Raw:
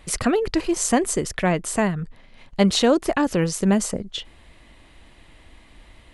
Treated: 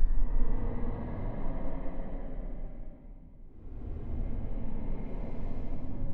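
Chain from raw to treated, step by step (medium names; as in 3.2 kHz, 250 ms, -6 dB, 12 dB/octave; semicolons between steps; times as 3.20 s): level-controlled noise filter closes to 310 Hz, open at -13.5 dBFS; gate with hold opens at -40 dBFS; Paulstretch 16×, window 0.10 s, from 2.09 s; trim +17 dB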